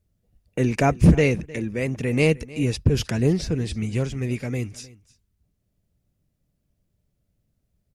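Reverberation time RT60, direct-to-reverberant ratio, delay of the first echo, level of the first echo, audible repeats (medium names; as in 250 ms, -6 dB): no reverb, no reverb, 308 ms, -20.5 dB, 1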